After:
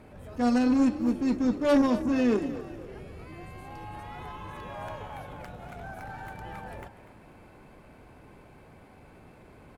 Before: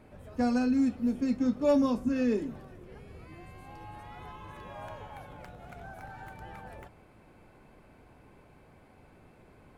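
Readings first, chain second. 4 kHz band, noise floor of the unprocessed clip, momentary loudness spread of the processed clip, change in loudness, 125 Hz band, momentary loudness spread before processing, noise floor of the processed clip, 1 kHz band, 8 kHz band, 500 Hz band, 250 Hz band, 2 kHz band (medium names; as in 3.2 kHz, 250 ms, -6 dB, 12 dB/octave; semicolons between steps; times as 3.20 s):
+5.5 dB, -58 dBFS, 20 LU, +2.0 dB, +4.0 dB, 22 LU, -53 dBFS, +4.5 dB, no reading, +2.5 dB, +3.0 dB, +5.0 dB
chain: Chebyshev shaper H 4 -14 dB, 5 -26 dB, 6 -16 dB, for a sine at -17 dBFS; transient shaper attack -7 dB, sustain -3 dB; frequency-shifting echo 244 ms, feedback 42%, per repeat +44 Hz, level -14 dB; trim +3.5 dB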